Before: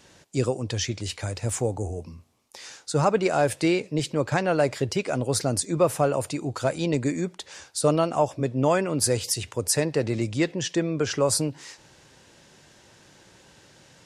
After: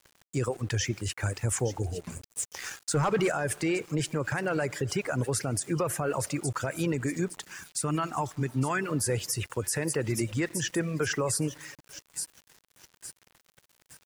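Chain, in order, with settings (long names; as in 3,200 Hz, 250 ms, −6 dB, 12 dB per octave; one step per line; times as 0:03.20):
graphic EQ with 15 bands 250 Hz −4 dB, 630 Hz −6 dB, 1,600 Hz +5 dB, 4,000 Hz −10 dB
delay with a high-pass on its return 864 ms, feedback 37%, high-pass 3,700 Hz, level −9 dB
comb and all-pass reverb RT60 1.6 s, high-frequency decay 0.75×, pre-delay 20 ms, DRR 13 dB
reverb reduction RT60 0.74 s
0:07.47–0:08.84: parametric band 540 Hz −12.5 dB 0.53 octaves
centre clipping without the shift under −48.5 dBFS
0:02.01–0:03.32: leveller curve on the samples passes 2
brickwall limiter −20.5 dBFS, peak gain reduction 11 dB
level +1.5 dB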